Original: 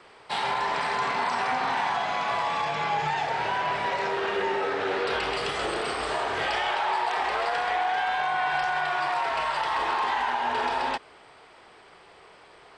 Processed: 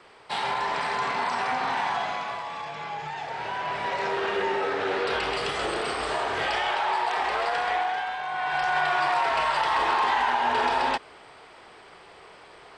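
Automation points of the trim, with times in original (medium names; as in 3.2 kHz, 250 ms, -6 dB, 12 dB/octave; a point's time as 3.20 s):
2.03 s -0.5 dB
2.43 s -7.5 dB
3.09 s -7.5 dB
4.11 s +0.5 dB
7.77 s +0.5 dB
8.20 s -6 dB
8.77 s +3 dB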